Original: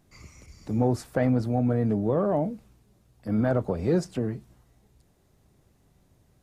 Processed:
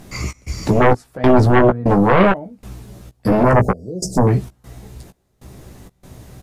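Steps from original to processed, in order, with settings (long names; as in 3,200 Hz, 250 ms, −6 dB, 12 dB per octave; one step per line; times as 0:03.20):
0:01.40–0:01.85: tilt shelving filter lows +3 dB, about 1,200 Hz
0:03.43–0:04.27: elliptic band-stop filter 620–5,400 Hz, stop band 40 dB
in parallel at −2 dB: downward compressor, threshold −36 dBFS, peak gain reduction 17.5 dB
on the sum: gate pattern "xx.xxx..x" 97 BPM −24 dB
sine wavefolder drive 13 dB, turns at −9.5 dBFS
double-tracking delay 16 ms −6 dB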